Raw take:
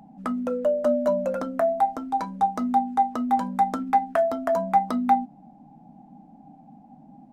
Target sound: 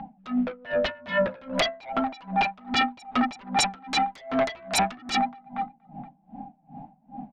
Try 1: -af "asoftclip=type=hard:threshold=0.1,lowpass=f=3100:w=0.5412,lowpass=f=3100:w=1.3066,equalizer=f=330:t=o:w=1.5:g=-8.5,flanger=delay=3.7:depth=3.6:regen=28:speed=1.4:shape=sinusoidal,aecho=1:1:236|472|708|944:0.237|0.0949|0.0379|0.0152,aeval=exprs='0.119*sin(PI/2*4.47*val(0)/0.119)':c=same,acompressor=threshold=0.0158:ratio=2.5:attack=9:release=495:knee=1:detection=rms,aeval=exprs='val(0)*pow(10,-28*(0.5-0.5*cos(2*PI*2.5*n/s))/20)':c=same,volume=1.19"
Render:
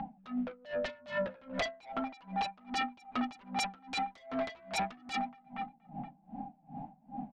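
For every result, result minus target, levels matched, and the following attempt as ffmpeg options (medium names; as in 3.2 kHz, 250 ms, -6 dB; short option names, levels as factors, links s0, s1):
compression: peak gain reduction +10.5 dB; hard clipper: distortion +14 dB
-af "asoftclip=type=hard:threshold=0.1,lowpass=f=3100:w=0.5412,lowpass=f=3100:w=1.3066,equalizer=f=330:t=o:w=1.5:g=-8.5,flanger=delay=3.7:depth=3.6:regen=28:speed=1.4:shape=sinusoidal,aecho=1:1:236|472|708|944:0.237|0.0949|0.0379|0.0152,aeval=exprs='0.119*sin(PI/2*4.47*val(0)/0.119)':c=same,aeval=exprs='val(0)*pow(10,-28*(0.5-0.5*cos(2*PI*2.5*n/s))/20)':c=same,volume=1.19"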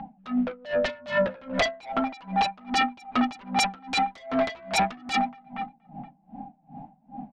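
hard clipper: distortion +14 dB
-af "asoftclip=type=hard:threshold=0.211,lowpass=f=3100:w=0.5412,lowpass=f=3100:w=1.3066,equalizer=f=330:t=o:w=1.5:g=-8.5,flanger=delay=3.7:depth=3.6:regen=28:speed=1.4:shape=sinusoidal,aecho=1:1:236|472|708|944:0.237|0.0949|0.0379|0.0152,aeval=exprs='0.119*sin(PI/2*4.47*val(0)/0.119)':c=same,aeval=exprs='val(0)*pow(10,-28*(0.5-0.5*cos(2*PI*2.5*n/s))/20)':c=same,volume=1.19"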